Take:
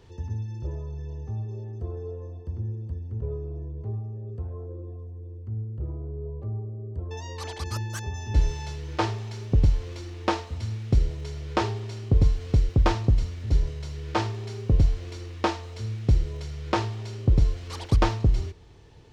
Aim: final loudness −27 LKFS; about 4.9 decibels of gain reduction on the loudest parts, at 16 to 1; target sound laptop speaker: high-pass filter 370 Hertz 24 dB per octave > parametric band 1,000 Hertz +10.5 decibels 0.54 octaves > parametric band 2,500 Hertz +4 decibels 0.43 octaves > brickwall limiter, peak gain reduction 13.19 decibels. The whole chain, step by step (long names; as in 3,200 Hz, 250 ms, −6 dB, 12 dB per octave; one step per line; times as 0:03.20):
downward compressor 16 to 1, threshold −19 dBFS
high-pass filter 370 Hz 24 dB per octave
parametric band 1,000 Hz +10.5 dB 0.54 octaves
parametric band 2,500 Hz +4 dB 0.43 octaves
level +12 dB
brickwall limiter −9.5 dBFS